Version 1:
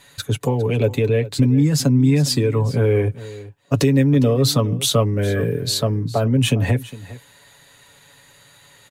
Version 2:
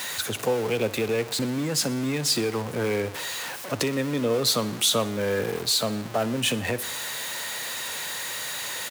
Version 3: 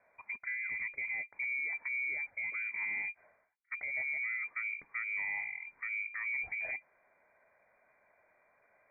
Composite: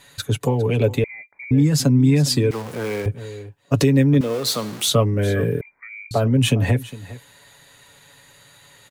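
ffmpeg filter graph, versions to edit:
-filter_complex "[2:a]asplit=2[s0][s1];[1:a]asplit=2[s2][s3];[0:a]asplit=5[s4][s5][s6][s7][s8];[s4]atrim=end=1.042[s9];[s0]atrim=start=1.038:end=1.512[s10];[s5]atrim=start=1.508:end=2.512[s11];[s2]atrim=start=2.508:end=3.062[s12];[s6]atrim=start=3.058:end=4.212[s13];[s3]atrim=start=4.208:end=4.882[s14];[s7]atrim=start=4.878:end=5.612[s15];[s1]atrim=start=5.608:end=6.112[s16];[s8]atrim=start=6.108[s17];[s9][s10]acrossfade=d=0.004:c1=hsin:c2=hsin[s18];[s18][s11]acrossfade=d=0.004:c1=hsin:c2=hsin[s19];[s19][s12]acrossfade=d=0.004:c1=hsin:c2=hsin[s20];[s20][s13]acrossfade=d=0.004:c1=hsin:c2=hsin[s21];[s21][s14]acrossfade=d=0.004:c1=hsin:c2=hsin[s22];[s22][s15]acrossfade=d=0.004:c1=hsin:c2=hsin[s23];[s23][s16]acrossfade=d=0.004:c1=hsin:c2=hsin[s24];[s24][s17]acrossfade=d=0.004:c1=hsin:c2=hsin"

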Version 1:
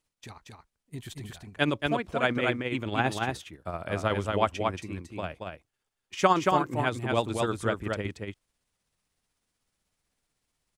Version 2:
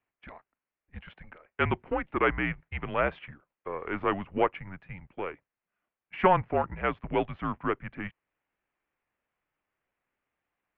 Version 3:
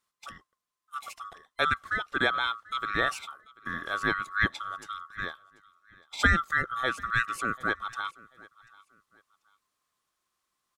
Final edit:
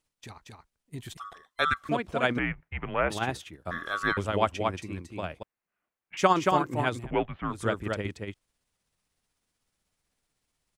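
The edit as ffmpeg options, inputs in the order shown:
-filter_complex "[2:a]asplit=2[s0][s1];[1:a]asplit=3[s2][s3][s4];[0:a]asplit=6[s5][s6][s7][s8][s9][s10];[s5]atrim=end=1.172[s11];[s0]atrim=start=1.168:end=1.892[s12];[s6]atrim=start=1.888:end=2.392[s13];[s2]atrim=start=2.388:end=3.102[s14];[s7]atrim=start=3.098:end=3.712[s15];[s1]atrim=start=3.708:end=4.172[s16];[s8]atrim=start=4.168:end=5.432[s17];[s3]atrim=start=5.428:end=6.172[s18];[s9]atrim=start=6.168:end=7.11[s19];[s4]atrim=start=6.95:end=7.63[s20];[s10]atrim=start=7.47[s21];[s11][s12]acrossfade=d=0.004:c1=hsin:c2=hsin[s22];[s22][s13]acrossfade=d=0.004:c1=hsin:c2=hsin[s23];[s23][s14]acrossfade=d=0.004:c1=hsin:c2=hsin[s24];[s24][s15]acrossfade=d=0.004:c1=hsin:c2=hsin[s25];[s25][s16]acrossfade=d=0.004:c1=hsin:c2=hsin[s26];[s26][s17]acrossfade=d=0.004:c1=hsin:c2=hsin[s27];[s27][s18]acrossfade=d=0.004:c1=hsin:c2=hsin[s28];[s28][s19]acrossfade=d=0.004:c1=hsin:c2=hsin[s29];[s29][s20]acrossfade=d=0.16:c1=tri:c2=tri[s30];[s30][s21]acrossfade=d=0.16:c1=tri:c2=tri"

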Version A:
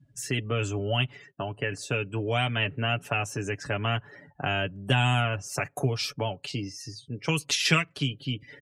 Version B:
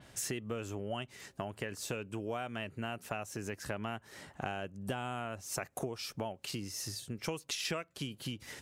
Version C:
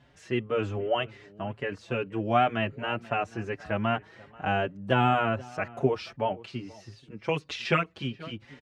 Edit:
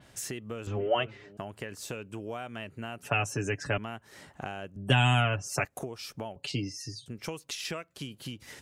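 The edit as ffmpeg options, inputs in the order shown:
-filter_complex "[0:a]asplit=3[s0][s1][s2];[1:a]asplit=5[s3][s4][s5][s6][s7];[s3]atrim=end=0.672[s8];[2:a]atrim=start=0.668:end=1.372[s9];[s4]atrim=start=1.368:end=3.032[s10];[s0]atrim=start=3.028:end=3.782[s11];[s5]atrim=start=3.778:end=4.762[s12];[s1]atrim=start=4.758:end=5.652[s13];[s6]atrim=start=5.648:end=6.362[s14];[s2]atrim=start=6.358:end=7.062[s15];[s7]atrim=start=7.058[s16];[s8][s9]acrossfade=d=0.004:c1=hsin:c2=hsin[s17];[s17][s10]acrossfade=d=0.004:c1=hsin:c2=hsin[s18];[s18][s11]acrossfade=d=0.004:c1=hsin:c2=hsin[s19];[s19][s12]acrossfade=d=0.004:c1=hsin:c2=hsin[s20];[s20][s13]acrossfade=d=0.004:c1=hsin:c2=hsin[s21];[s21][s14]acrossfade=d=0.004:c1=hsin:c2=hsin[s22];[s22][s15]acrossfade=d=0.004:c1=hsin:c2=hsin[s23];[s23][s16]acrossfade=d=0.004:c1=hsin:c2=hsin"

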